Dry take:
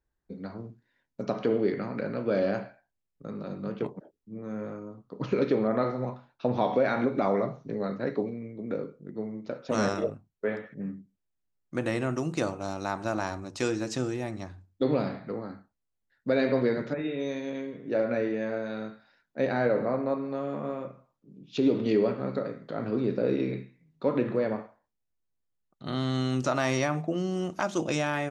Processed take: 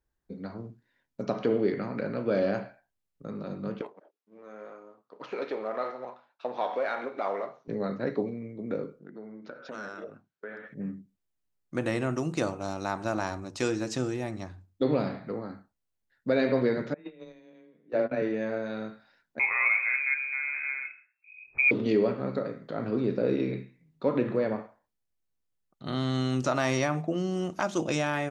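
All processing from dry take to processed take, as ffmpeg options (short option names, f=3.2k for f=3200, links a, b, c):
-filter_complex "[0:a]asettb=1/sr,asplit=3[a][b][c];[a]atrim=end=3.814[d];[b]atrim=start=3.81:end=7.68,asetpts=PTS-STARTPTS,afade=t=in:d=0.004:c=qsin,afade=t=out:st=3.866:d=0.004:c=qsin,aeval=exprs='if(lt(val(0),0),0.708*val(0),val(0))':c=same,highpass=580,highshelf=f=6.3k:g=-10.5[e];[c]atrim=start=7.676[f];[d][e]acrossfade=d=0.004:c1=hsin:c2=qsin[g];[g][f]acrossfade=d=0.004:c1=qsin:c2=hsin,asettb=1/sr,asplit=3[h][i][j];[h]atrim=end=8.994[k];[i]atrim=start=8.99:end=10.68,asetpts=PTS-STARTPTS,afade=t=in:d=0.004:c=qsin,afade=t=out:st=1.686:d=0.004:c=qsin,equalizer=f=1.5k:t=o:w=0.37:g=12.5,acompressor=threshold=-40dB:ratio=3:attack=3.2:release=140:knee=1:detection=peak,highpass=200,lowpass=5.8k[l];[j]atrim=start=10.676[m];[k][l]acrossfade=d=0.004:c1=hsin:c2=qsin[n];[n][m]acrossfade=d=0.004:c1=qsin:c2=hsin,asettb=1/sr,asplit=3[o][p][q];[o]atrim=end=16.944[r];[p]atrim=start=16.94:end=18.22,asetpts=PTS-STARTPTS,afade=t=in:d=0.004:c=qsin,afade=t=out:st=1.276:d=0.004:c=qsin,lowpass=5.5k,agate=range=-20dB:threshold=-29dB:ratio=16:release=100:detection=peak,afreqshift=15[s];[q]atrim=start=18.216[t];[r][s]acrossfade=d=0.004:c1=hsin:c2=qsin[u];[u][t]acrossfade=d=0.004:c1=qsin:c2=hsin,asettb=1/sr,asplit=3[v][w][x];[v]atrim=end=19.394[y];[w]atrim=start=19.39:end=21.71,asetpts=PTS-STARTPTS,afade=t=in:d=0.004:c=qsin,afade=t=out:st=2.316:d=0.004:c=qsin,lowpass=f=2.3k:t=q:w=0.5098,lowpass=f=2.3k:t=q:w=0.6013,lowpass=f=2.3k:t=q:w=0.9,lowpass=f=2.3k:t=q:w=2.563,afreqshift=-2700,equalizer=f=250:t=o:w=0.33:g=-13.5[z];[x]atrim=start=21.706[aa];[y][z]acrossfade=d=0.004:c1=hsin:c2=qsin[ab];[ab][aa]acrossfade=d=0.004:c1=qsin:c2=hsin"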